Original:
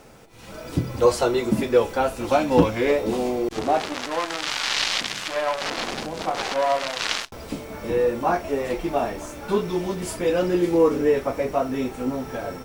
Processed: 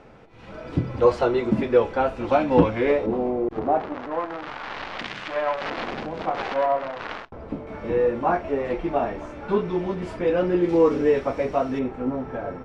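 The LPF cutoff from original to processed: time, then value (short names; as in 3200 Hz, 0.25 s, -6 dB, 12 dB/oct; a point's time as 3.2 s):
2600 Hz
from 3.06 s 1200 Hz
from 4.99 s 2300 Hz
from 6.66 s 1300 Hz
from 7.67 s 2400 Hz
from 10.69 s 4400 Hz
from 11.79 s 1700 Hz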